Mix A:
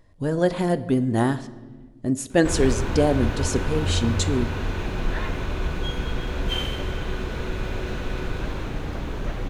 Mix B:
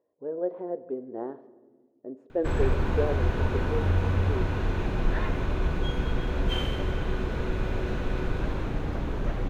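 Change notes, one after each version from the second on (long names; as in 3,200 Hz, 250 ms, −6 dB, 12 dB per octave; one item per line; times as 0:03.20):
speech: add four-pole ladder band-pass 500 Hz, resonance 55%
master: add high-shelf EQ 2,300 Hz −8.5 dB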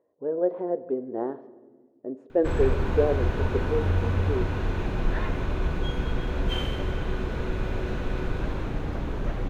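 speech +5.0 dB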